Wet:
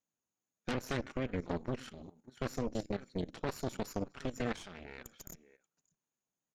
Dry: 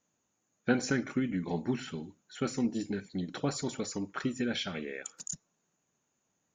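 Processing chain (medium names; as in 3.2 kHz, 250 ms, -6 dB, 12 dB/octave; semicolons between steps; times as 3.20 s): echo from a far wall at 100 m, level -18 dB; Chebyshev shaper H 3 -34 dB, 6 -38 dB, 8 -10 dB, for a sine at -14 dBFS; level held to a coarse grid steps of 15 dB; trim -4 dB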